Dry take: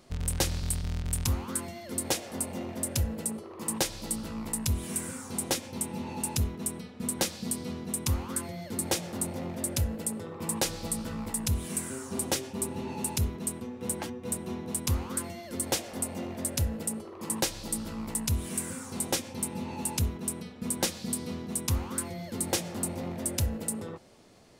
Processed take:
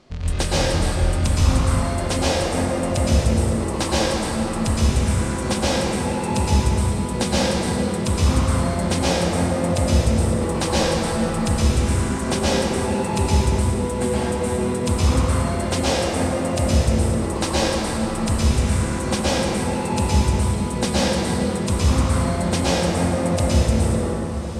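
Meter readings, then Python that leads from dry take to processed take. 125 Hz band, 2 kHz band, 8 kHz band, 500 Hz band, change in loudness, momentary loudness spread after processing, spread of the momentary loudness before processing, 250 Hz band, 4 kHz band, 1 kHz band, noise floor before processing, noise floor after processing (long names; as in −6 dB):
+14.5 dB, +13.5 dB, +3.0 dB, +15.5 dB, +11.5 dB, 4 LU, 5 LU, +13.0 dB, +10.5 dB, +15.0 dB, −45 dBFS, −25 dBFS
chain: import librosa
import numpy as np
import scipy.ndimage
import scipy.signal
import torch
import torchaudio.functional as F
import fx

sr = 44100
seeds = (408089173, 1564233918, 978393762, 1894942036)

p1 = scipy.signal.sosfilt(scipy.signal.butter(2, 5500.0, 'lowpass', fs=sr, output='sos'), x)
p2 = p1 + fx.echo_diffused(p1, sr, ms=1032, feedback_pct=46, wet_db=-14.0, dry=0)
p3 = fx.rev_plate(p2, sr, seeds[0], rt60_s=3.1, hf_ratio=0.45, predelay_ms=105, drr_db=-9.5)
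y = F.gain(torch.from_numpy(p3), 4.0).numpy()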